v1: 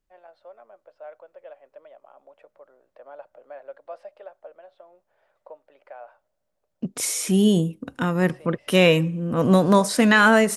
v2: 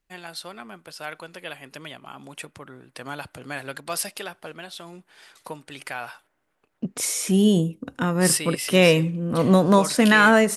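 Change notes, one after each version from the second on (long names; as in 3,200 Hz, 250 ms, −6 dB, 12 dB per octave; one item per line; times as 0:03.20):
first voice: remove four-pole ladder band-pass 620 Hz, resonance 75%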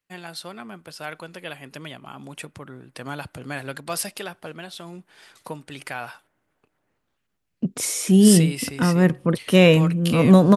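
second voice: entry +0.80 s
master: add parametric band 120 Hz +6 dB 2.8 octaves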